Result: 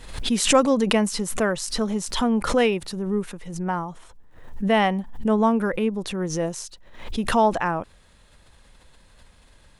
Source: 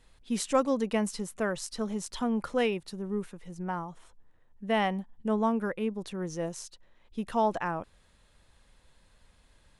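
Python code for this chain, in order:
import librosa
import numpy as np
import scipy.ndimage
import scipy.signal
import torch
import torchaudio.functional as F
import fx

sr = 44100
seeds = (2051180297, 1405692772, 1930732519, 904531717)

y = fx.pre_swell(x, sr, db_per_s=76.0)
y = y * 10.0 ** (7.5 / 20.0)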